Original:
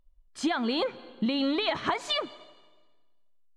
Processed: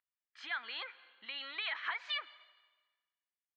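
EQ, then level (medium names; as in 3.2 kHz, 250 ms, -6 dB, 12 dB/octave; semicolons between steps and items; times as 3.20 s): resonant high-pass 1.8 kHz, resonance Q 2; distance through air 270 m; -5.0 dB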